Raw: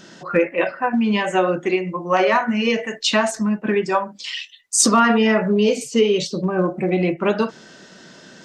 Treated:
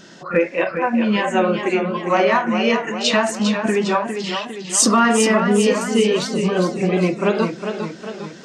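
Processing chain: pre-echo 34 ms -14 dB; warbling echo 0.405 s, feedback 53%, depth 89 cents, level -7.5 dB

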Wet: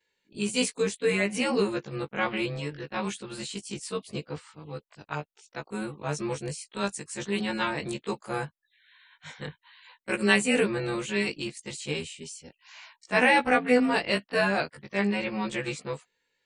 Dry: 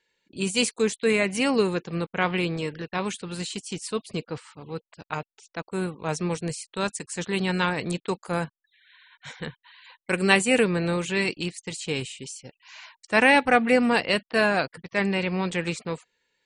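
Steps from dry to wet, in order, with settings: short-time reversal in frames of 40 ms

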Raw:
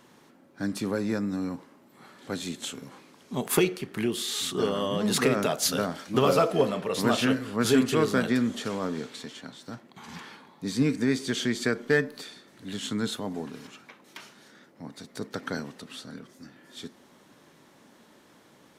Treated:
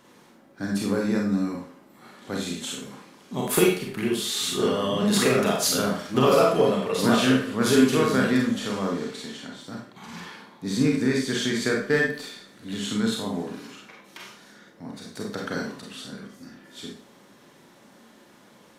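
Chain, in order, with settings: Schroeder reverb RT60 0.43 s, combs from 31 ms, DRR -1 dB

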